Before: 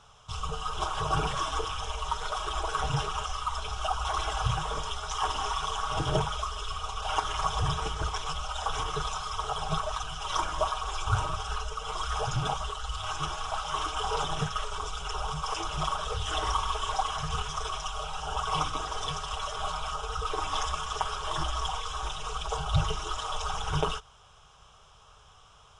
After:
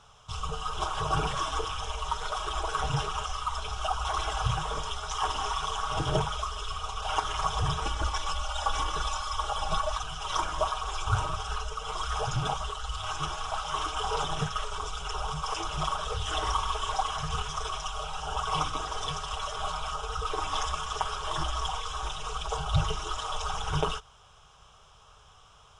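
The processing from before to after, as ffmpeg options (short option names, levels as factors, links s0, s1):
-filter_complex "[0:a]asettb=1/sr,asplit=3[s0][s1][s2];[s0]atrim=end=7.854[s3];[s1]atrim=start=7.85:end=9.97,asetpts=PTS-STARTPTS,afade=t=in:d=0.004:c=qsin,afade=t=out:st=2.116:d=0.004:c=qsin,aecho=1:1:3.5:0.65,atrim=end_sample=93492[s4];[s2]atrim=start=9.966[s5];[s3][s4]acrossfade=d=0.004:c1=hsin:c2=qsin[s6];[s6][s5]acrossfade=d=0.004:c1=qsin:c2=hsin"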